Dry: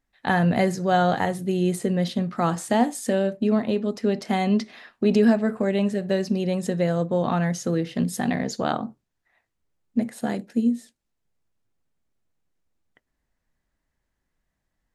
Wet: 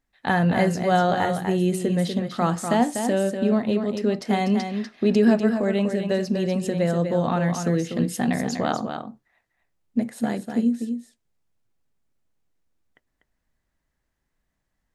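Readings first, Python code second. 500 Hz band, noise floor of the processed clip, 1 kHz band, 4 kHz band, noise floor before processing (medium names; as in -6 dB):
+1.0 dB, -77 dBFS, +0.5 dB, +1.0 dB, -79 dBFS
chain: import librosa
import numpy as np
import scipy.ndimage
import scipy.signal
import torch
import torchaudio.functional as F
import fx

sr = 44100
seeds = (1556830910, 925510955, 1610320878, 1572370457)

y = x + 10.0 ** (-7.0 / 20.0) * np.pad(x, (int(245 * sr / 1000.0), 0))[:len(x)]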